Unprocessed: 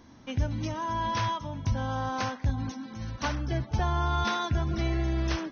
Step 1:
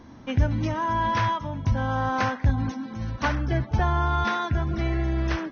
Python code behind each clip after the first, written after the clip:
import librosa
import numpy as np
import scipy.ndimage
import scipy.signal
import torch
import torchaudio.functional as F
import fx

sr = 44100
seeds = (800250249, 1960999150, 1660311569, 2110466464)

y = fx.high_shelf(x, sr, hz=3200.0, db=-10.0)
y = fx.rider(y, sr, range_db=10, speed_s=2.0)
y = fx.dynamic_eq(y, sr, hz=1800.0, q=1.4, threshold_db=-48.0, ratio=4.0, max_db=5)
y = F.gain(torch.from_numpy(y), 4.0).numpy()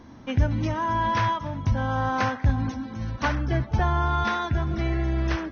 y = x + 10.0 ** (-21.5 / 20.0) * np.pad(x, (int(291 * sr / 1000.0), 0))[:len(x)]